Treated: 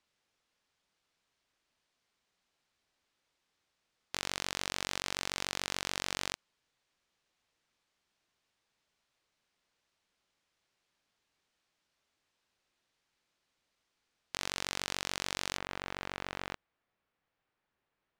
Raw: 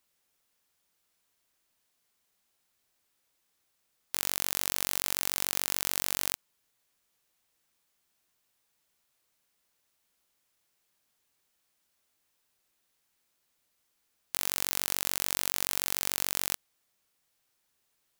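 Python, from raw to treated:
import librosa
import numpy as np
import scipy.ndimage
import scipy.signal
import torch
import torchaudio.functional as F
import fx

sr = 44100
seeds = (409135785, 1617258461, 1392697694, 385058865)

y = fx.lowpass(x, sr, hz=fx.steps((0.0, 5100.0), (15.57, 2100.0)), slope=12)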